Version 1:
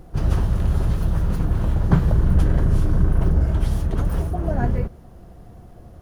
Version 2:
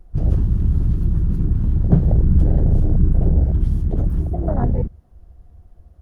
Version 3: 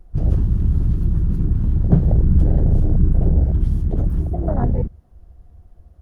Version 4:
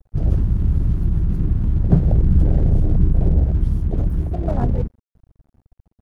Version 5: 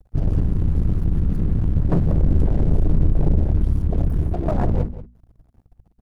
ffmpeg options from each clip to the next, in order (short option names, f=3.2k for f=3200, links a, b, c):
-af "afwtdn=0.0708,volume=2.5dB"
-af anull
-af "aeval=exprs='sgn(val(0))*max(abs(val(0))-0.00891,0)':c=same"
-filter_complex "[0:a]aeval=exprs='(tanh(7.08*val(0)+0.6)-tanh(0.6))/7.08':c=same,bandreject=f=60:t=h:w=6,bandreject=f=120:t=h:w=6,bandreject=f=180:t=h:w=6,bandreject=f=240:t=h:w=6,asplit=2[a][b];[b]adelay=186.6,volume=-14dB,highshelf=f=4k:g=-4.2[c];[a][c]amix=inputs=2:normalize=0,volume=4.5dB"